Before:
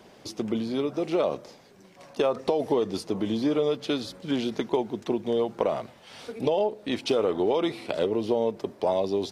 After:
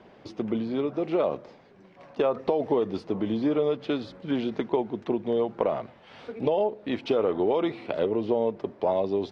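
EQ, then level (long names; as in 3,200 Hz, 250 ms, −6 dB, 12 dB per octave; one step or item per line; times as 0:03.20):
low-pass filter 2,600 Hz 12 dB per octave
0.0 dB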